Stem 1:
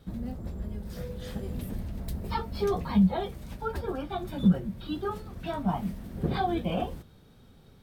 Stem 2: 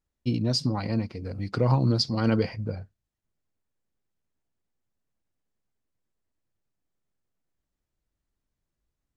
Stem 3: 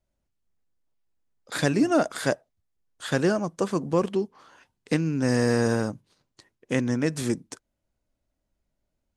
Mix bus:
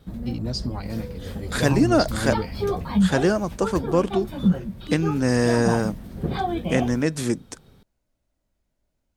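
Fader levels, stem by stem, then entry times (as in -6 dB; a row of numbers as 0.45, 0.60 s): +2.5, -3.5, +2.5 dB; 0.00, 0.00, 0.00 s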